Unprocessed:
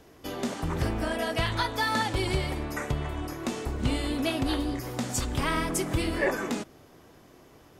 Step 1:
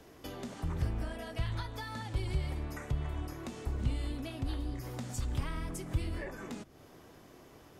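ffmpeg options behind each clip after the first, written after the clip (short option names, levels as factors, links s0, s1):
-filter_complex "[0:a]acrossover=split=140[s0][s1];[s1]acompressor=threshold=0.00794:ratio=4[s2];[s0][s2]amix=inputs=2:normalize=0,volume=0.841"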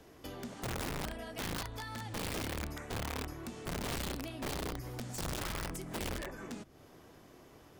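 -af "aeval=exprs='(mod(35.5*val(0)+1,2)-1)/35.5':c=same,volume=0.841"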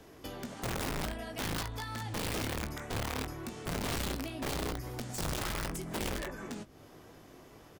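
-filter_complex "[0:a]asplit=2[s0][s1];[s1]adelay=19,volume=0.316[s2];[s0][s2]amix=inputs=2:normalize=0,volume=1.33"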